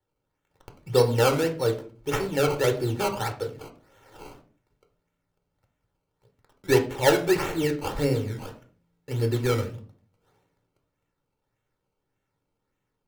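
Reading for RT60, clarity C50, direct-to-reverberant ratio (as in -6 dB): 0.40 s, 12.5 dB, 4.5 dB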